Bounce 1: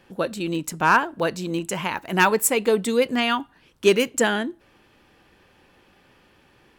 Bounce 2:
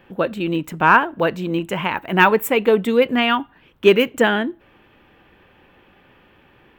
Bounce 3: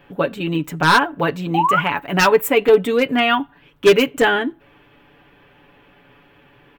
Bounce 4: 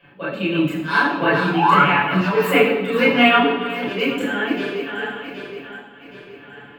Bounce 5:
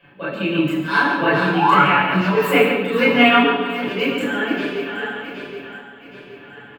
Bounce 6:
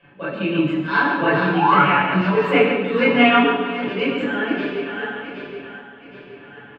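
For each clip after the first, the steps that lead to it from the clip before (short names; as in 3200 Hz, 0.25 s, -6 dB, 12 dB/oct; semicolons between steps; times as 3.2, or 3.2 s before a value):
band shelf 7000 Hz -15.5 dB; gain +4.5 dB
painted sound rise, 1.54–1.8, 740–1500 Hz -18 dBFS; wavefolder -6.5 dBFS; comb 7 ms, depth 70%
regenerating reverse delay 0.386 s, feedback 65%, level -14 dB; auto swell 0.316 s; reverb RT60 0.85 s, pre-delay 22 ms, DRR -6.5 dB; gain -13 dB
outdoor echo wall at 24 m, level -7 dB
air absorption 180 m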